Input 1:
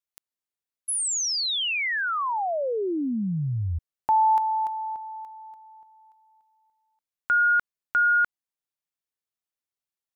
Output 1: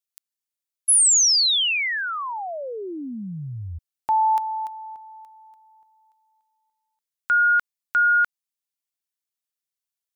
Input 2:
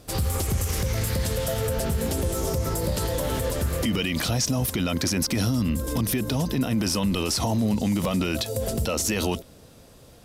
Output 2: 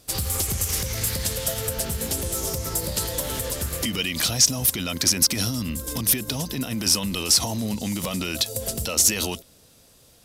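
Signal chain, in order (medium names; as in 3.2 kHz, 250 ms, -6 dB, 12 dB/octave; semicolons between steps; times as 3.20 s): treble shelf 2.3 kHz +11.5 dB; upward expansion 1.5:1, over -30 dBFS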